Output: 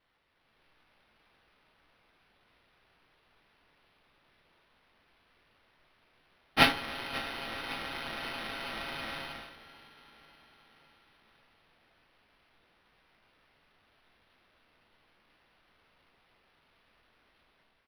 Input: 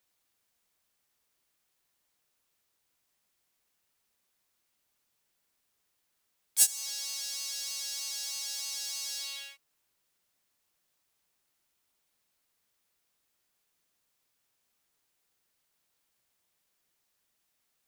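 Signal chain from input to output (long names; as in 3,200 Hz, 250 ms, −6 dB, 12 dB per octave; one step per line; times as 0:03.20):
inverse Chebyshev band-stop filter 140–8,600 Hz, stop band 50 dB
automatic gain control gain up to 7.5 dB
repeating echo 548 ms, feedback 58%, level −17 dB
convolution reverb RT60 0.55 s, pre-delay 3 ms, DRR 0 dB
linearly interpolated sample-rate reduction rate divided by 6×
level +6 dB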